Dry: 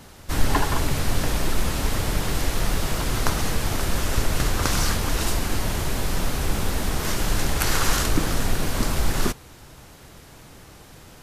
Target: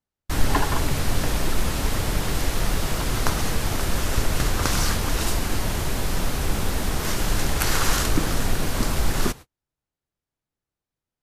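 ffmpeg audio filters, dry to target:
-af "agate=range=0.00631:threshold=0.02:ratio=16:detection=peak"

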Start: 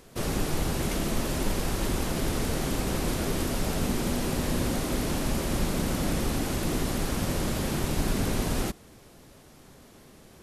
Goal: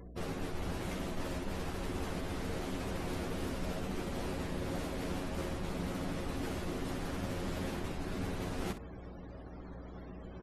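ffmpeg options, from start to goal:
-af "highshelf=f=8700:g=-2.5,areverse,acompressor=threshold=0.0141:ratio=10,areverse,afftfilt=real='re*gte(hypot(re,im),0.002)':imag='im*gte(hypot(re,im),0.002)':win_size=1024:overlap=0.75,aeval=exprs='val(0)+0.00316*(sin(2*PI*60*n/s)+sin(2*PI*2*60*n/s)/2+sin(2*PI*3*60*n/s)/3+sin(2*PI*4*60*n/s)/4+sin(2*PI*5*60*n/s)/5)':c=same,bass=f=250:g=-2,treble=f=4000:g=-6,aecho=1:1:11|63:0.708|0.316,volume=1.33"

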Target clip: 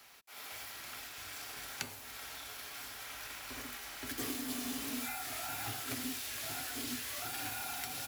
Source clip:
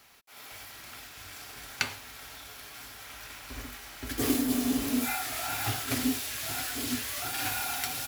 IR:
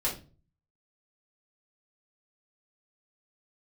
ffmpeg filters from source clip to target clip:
-filter_complex "[0:a]lowshelf=f=260:g=-7,acrossover=split=110|260|740|6700[s0][s1][s2][s3][s4];[s0]acompressor=threshold=0.001:ratio=4[s5];[s1]acompressor=threshold=0.00562:ratio=4[s6];[s2]acompressor=threshold=0.00282:ratio=4[s7];[s3]acompressor=threshold=0.00708:ratio=4[s8];[s4]acompressor=threshold=0.00708:ratio=4[s9];[s5][s6][s7][s8][s9]amix=inputs=5:normalize=0"

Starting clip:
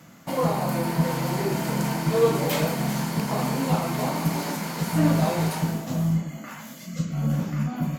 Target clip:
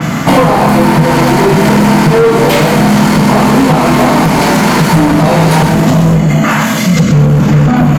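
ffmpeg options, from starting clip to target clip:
-filter_complex "[0:a]lowpass=12000,bandreject=f=550:w=12,asplit=2[s0][s1];[s1]adelay=33,volume=0.398[s2];[s0][s2]amix=inputs=2:normalize=0,acompressor=threshold=0.0355:ratio=6,asoftclip=type=hard:threshold=0.0266,asplit=2[s3][s4];[s4]aecho=0:1:125:0.376[s5];[s3][s5]amix=inputs=2:normalize=0,alimiter=level_in=63.1:limit=0.891:release=50:level=0:latency=1,adynamicequalizer=threshold=0.0398:dfrequency=3700:dqfactor=0.7:tfrequency=3700:tqfactor=0.7:attack=5:release=100:ratio=0.375:range=3:mode=cutabove:tftype=highshelf,volume=0.891"

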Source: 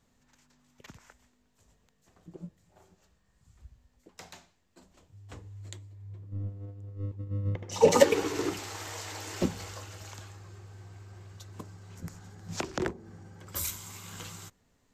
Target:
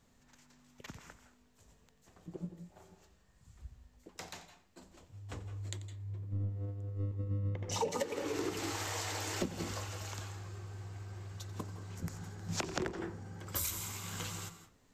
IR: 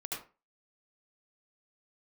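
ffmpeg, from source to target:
-filter_complex "[0:a]asplit=2[s0][s1];[1:a]atrim=start_sample=2205,adelay=89[s2];[s1][s2]afir=irnorm=-1:irlink=0,volume=0.282[s3];[s0][s3]amix=inputs=2:normalize=0,acompressor=threshold=0.0224:ratio=16,volume=1.19"

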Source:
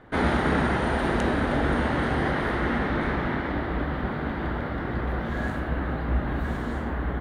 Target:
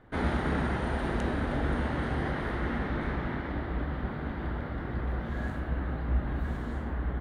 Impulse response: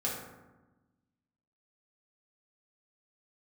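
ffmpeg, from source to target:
-af "lowshelf=f=140:g=7,volume=0.398"

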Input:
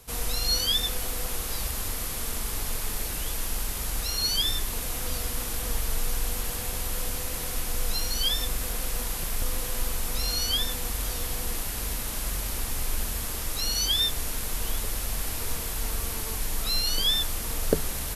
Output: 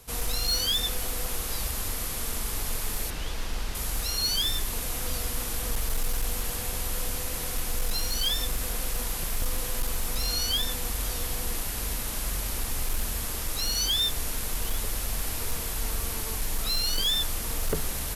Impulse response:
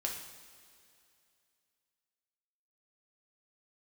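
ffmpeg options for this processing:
-filter_complex "[0:a]asettb=1/sr,asplit=3[s0][s1][s2];[s0]atrim=end=3.104[s3];[s1]atrim=start=3.1:end=3.75,asetpts=PTS-STARTPTS,afade=t=in:d=0.004:c=qsin,afade=t=out:st=0.646:d=0.004:c=qsin,acrossover=split=5900[s4][s5];[s5]acompressor=threshold=0.00355:ratio=4:attack=1:release=60[s6];[s4][s6]amix=inputs=2:normalize=0[s7];[s2]atrim=start=3.746[s8];[s3][s7]acrossfade=d=0.004:c1=hsin:c2=qsin[s9];[s9][s8]acrossfade=d=0.004:c1=qsin:c2=hsin,asoftclip=type=hard:threshold=0.0891"

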